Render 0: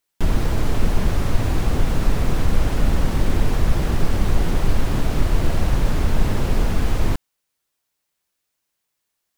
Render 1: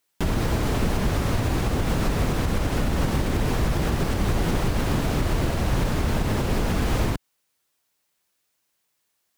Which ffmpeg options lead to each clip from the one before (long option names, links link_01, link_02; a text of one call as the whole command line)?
ffmpeg -i in.wav -af "highpass=frequency=71:poles=1,alimiter=limit=-17dB:level=0:latency=1:release=149,volume=3.5dB" out.wav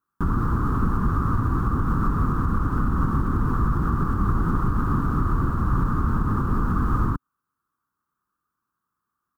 ffmpeg -i in.wav -af "firequalizer=gain_entry='entry(270,0);entry(620,-20);entry(1200,10);entry(2100,-25);entry(14000,-16)':delay=0.05:min_phase=1,volume=1.5dB" out.wav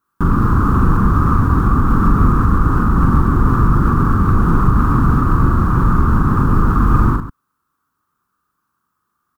ffmpeg -i in.wav -filter_complex "[0:a]acontrast=82,asplit=2[link_01][link_02];[link_02]aecho=0:1:42|136:0.668|0.266[link_03];[link_01][link_03]amix=inputs=2:normalize=0,volume=1dB" out.wav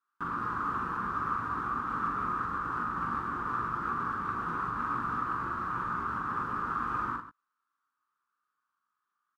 ffmpeg -i in.wav -filter_complex "[0:a]bandpass=frequency=2000:width_type=q:width=0.85:csg=0,asplit=2[link_01][link_02];[link_02]adelay=17,volume=-8.5dB[link_03];[link_01][link_03]amix=inputs=2:normalize=0,volume=-8.5dB" out.wav